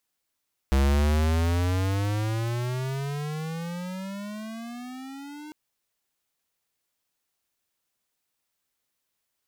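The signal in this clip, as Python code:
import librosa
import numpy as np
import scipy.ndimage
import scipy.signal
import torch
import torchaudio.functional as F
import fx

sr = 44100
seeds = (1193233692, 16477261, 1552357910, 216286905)

y = fx.riser_tone(sr, length_s=4.8, level_db=-20.0, wave='square', hz=66.5, rise_st=26.5, swell_db=-21.0)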